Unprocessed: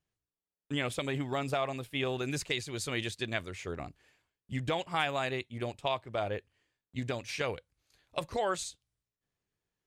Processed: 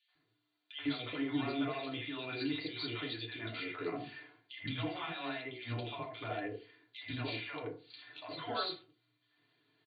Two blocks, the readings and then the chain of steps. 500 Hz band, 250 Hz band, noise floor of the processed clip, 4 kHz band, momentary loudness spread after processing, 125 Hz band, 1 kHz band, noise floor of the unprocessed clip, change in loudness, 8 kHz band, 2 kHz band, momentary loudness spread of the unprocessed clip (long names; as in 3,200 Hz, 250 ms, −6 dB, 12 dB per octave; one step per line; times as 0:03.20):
−7.5 dB, 0.0 dB, −80 dBFS, −2.5 dB, 12 LU, −5.5 dB, −6.5 dB, below −85 dBFS, −4.5 dB, below −35 dB, −5.0 dB, 9 LU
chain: parametric band 3,500 Hz +11 dB 2.4 octaves
brick-wall band-pass 100–4,700 Hz
comb filter 2.9 ms, depth 55%
downward compressor 2.5 to 1, threshold −47 dBFS, peak gain reduction 19 dB
brickwall limiter −38 dBFS, peak gain reduction 14.5 dB
high-frequency loss of the air 63 metres
three-band delay without the direct sound highs, mids, lows 80/150 ms, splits 670/2,300 Hz
feedback delay network reverb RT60 0.37 s, low-frequency decay 1×, high-frequency decay 0.5×, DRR −1.5 dB
level +7.5 dB